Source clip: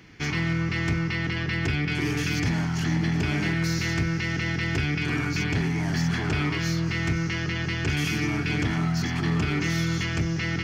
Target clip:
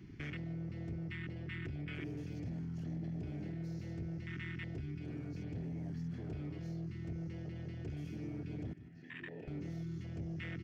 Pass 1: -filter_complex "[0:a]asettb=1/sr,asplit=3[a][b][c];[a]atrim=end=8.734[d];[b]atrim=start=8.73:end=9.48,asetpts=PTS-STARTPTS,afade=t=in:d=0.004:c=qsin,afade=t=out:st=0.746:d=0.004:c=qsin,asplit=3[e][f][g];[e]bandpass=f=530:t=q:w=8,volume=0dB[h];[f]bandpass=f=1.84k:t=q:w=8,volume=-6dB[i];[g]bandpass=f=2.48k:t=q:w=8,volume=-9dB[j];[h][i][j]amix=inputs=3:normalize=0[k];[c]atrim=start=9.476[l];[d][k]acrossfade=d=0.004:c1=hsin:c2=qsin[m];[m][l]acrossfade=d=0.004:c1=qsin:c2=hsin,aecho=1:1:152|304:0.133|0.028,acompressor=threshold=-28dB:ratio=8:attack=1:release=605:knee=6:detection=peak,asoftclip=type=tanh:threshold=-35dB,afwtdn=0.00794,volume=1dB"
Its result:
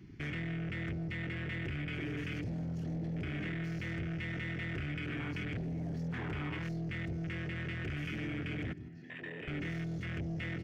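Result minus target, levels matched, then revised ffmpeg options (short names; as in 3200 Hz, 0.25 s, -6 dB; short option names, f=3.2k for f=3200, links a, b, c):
compressor: peak gain reduction -7 dB
-filter_complex "[0:a]asettb=1/sr,asplit=3[a][b][c];[a]atrim=end=8.734[d];[b]atrim=start=8.73:end=9.48,asetpts=PTS-STARTPTS,afade=t=in:d=0.004:c=qsin,afade=t=out:st=0.746:d=0.004:c=qsin,asplit=3[e][f][g];[e]bandpass=f=530:t=q:w=8,volume=0dB[h];[f]bandpass=f=1.84k:t=q:w=8,volume=-6dB[i];[g]bandpass=f=2.48k:t=q:w=8,volume=-9dB[j];[h][i][j]amix=inputs=3:normalize=0[k];[c]atrim=start=9.476[l];[d][k]acrossfade=d=0.004:c1=hsin:c2=qsin[m];[m][l]acrossfade=d=0.004:c1=qsin:c2=hsin,aecho=1:1:152|304:0.133|0.028,acompressor=threshold=-36dB:ratio=8:attack=1:release=605:knee=6:detection=peak,asoftclip=type=tanh:threshold=-35dB,afwtdn=0.00794,volume=1dB"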